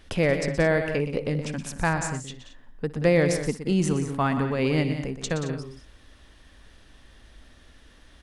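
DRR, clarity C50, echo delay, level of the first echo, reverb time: no reverb audible, no reverb audible, 61 ms, −20.0 dB, no reverb audible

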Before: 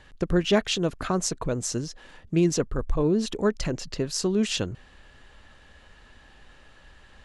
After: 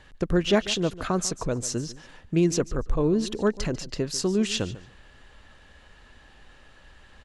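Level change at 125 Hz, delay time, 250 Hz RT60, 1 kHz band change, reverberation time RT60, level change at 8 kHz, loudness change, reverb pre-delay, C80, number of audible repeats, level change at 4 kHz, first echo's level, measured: 0.0 dB, 145 ms, no reverb audible, 0.0 dB, no reverb audible, 0.0 dB, 0.0 dB, no reverb audible, no reverb audible, 2, 0.0 dB, −17.0 dB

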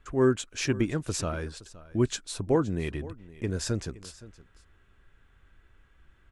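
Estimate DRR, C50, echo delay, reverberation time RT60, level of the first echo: no reverb audible, no reverb audible, 518 ms, no reverb audible, −19.0 dB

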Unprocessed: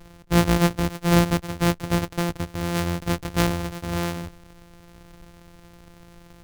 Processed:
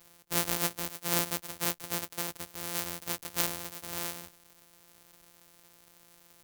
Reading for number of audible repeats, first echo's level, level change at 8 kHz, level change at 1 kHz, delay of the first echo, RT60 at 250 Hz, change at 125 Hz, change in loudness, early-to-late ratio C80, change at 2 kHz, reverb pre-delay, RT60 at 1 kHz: no echo audible, no echo audible, 0.0 dB, −11.5 dB, no echo audible, no reverb audible, −21.0 dB, −8.5 dB, no reverb audible, −9.0 dB, no reverb audible, no reverb audible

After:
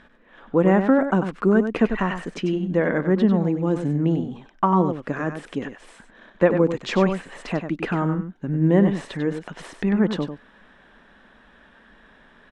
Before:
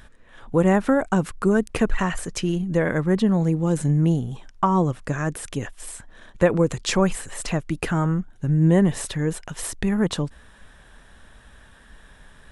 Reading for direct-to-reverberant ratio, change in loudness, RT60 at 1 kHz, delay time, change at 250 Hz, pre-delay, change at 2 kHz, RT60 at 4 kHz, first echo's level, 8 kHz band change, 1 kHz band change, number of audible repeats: no reverb audible, +0.5 dB, no reverb audible, 96 ms, +1.0 dB, no reverb audible, 0.0 dB, no reverb audible, −8.5 dB, below −15 dB, +1.0 dB, 1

